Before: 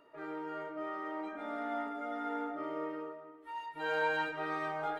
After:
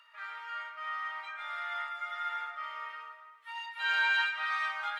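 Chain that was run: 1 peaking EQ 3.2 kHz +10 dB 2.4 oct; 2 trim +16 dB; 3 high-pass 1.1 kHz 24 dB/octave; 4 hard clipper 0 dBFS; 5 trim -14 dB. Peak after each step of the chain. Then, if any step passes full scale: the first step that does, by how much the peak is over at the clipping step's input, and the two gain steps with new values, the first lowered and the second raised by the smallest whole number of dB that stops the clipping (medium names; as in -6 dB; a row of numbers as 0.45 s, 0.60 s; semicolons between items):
-17.0 dBFS, -1.0 dBFS, -4.0 dBFS, -4.0 dBFS, -18.0 dBFS; nothing clips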